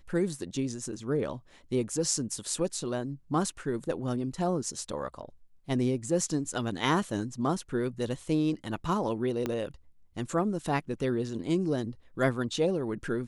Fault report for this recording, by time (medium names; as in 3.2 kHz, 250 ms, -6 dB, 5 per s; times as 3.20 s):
9.46 s: pop -17 dBFS